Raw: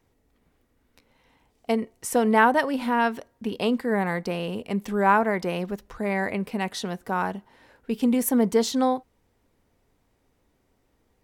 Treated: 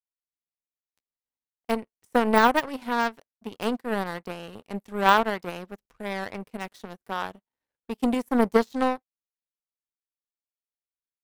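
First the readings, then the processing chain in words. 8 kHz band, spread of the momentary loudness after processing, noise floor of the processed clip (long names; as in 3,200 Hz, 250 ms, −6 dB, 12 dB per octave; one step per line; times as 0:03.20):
−10.5 dB, 19 LU, below −85 dBFS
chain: de-essing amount 75%
high-shelf EQ 8,900 Hz +3 dB
power curve on the samples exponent 2
level +6.5 dB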